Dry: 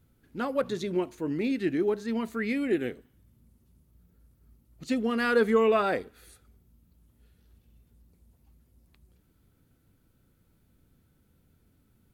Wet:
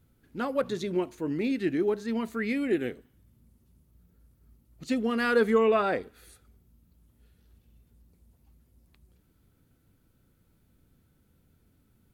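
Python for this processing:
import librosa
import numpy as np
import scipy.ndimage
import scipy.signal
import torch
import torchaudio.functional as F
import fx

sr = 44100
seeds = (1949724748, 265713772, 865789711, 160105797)

y = fx.high_shelf(x, sr, hz=6600.0, db=-9.0, at=(5.58, 6.03))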